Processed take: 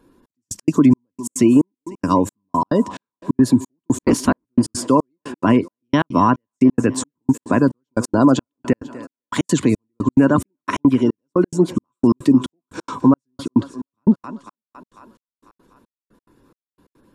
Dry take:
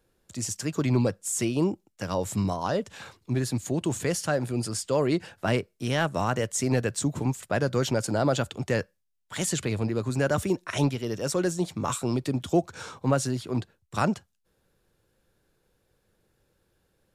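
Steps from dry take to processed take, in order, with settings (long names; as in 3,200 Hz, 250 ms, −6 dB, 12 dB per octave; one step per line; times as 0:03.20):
0:03.99–0:04.46: sub-harmonics by changed cycles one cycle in 3, inverted
gate on every frequency bin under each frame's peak −30 dB strong
in parallel at +0.5 dB: downward compressor, threshold −34 dBFS, peak gain reduction 16 dB
on the sum: hollow resonant body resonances 270/1,000 Hz, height 18 dB, ringing for 35 ms
on a send: feedback echo with a high-pass in the loop 248 ms, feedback 68%, high-pass 210 Hz, level −19 dB
on the sum: gate pattern "xxx...x." 177 BPM −60 dB
boost into a limiter +4.5 dB
level −3 dB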